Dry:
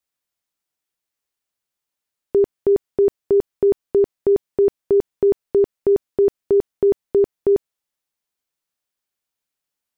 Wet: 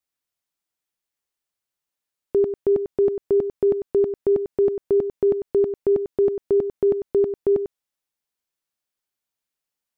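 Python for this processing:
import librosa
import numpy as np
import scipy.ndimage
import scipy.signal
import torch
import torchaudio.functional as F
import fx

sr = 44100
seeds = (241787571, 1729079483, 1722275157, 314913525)

y = x + 10.0 ** (-9.5 / 20.0) * np.pad(x, (int(97 * sr / 1000.0), 0))[:len(x)]
y = F.gain(torch.from_numpy(y), -3.0).numpy()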